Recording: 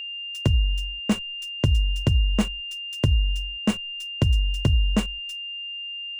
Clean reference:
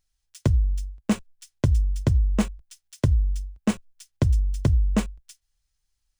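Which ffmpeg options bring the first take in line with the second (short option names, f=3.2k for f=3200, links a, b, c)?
-af "bandreject=f=2.8k:w=30"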